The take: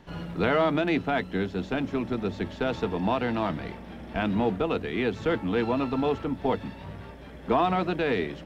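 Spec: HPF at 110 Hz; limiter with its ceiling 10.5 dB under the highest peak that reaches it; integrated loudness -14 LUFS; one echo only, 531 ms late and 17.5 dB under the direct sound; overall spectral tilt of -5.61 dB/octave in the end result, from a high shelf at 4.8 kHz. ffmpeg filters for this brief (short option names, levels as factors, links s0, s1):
-af "highpass=110,highshelf=f=4800:g=-7.5,alimiter=limit=0.0708:level=0:latency=1,aecho=1:1:531:0.133,volume=8.91"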